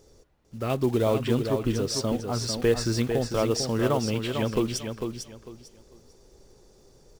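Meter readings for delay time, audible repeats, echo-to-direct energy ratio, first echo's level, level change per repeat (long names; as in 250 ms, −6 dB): 449 ms, 3, −6.0 dB, −6.5 dB, −12.5 dB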